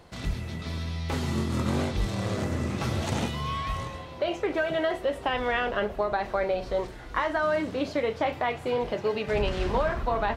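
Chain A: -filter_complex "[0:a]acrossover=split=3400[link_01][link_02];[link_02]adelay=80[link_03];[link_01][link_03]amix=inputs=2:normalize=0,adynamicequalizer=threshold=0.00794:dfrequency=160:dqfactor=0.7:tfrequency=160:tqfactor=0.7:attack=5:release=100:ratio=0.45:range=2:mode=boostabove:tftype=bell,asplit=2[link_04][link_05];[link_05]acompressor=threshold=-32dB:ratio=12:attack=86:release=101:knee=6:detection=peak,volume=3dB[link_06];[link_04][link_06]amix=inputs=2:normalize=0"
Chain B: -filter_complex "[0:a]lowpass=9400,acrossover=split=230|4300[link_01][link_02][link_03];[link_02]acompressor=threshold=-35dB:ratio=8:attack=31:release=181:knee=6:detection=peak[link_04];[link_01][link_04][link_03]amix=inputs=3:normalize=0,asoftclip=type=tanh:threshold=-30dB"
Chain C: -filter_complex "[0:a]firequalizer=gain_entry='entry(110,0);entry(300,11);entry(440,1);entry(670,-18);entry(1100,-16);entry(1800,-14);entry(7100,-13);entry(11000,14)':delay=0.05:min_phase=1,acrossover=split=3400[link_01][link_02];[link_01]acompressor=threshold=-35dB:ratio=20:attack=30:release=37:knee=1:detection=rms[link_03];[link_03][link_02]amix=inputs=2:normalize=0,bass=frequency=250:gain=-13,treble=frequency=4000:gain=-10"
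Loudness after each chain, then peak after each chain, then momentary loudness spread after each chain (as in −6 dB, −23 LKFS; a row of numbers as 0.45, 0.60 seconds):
−22.5, −36.5, −41.0 LKFS; −6.0, −30.0, −25.0 dBFS; 5, 4, 5 LU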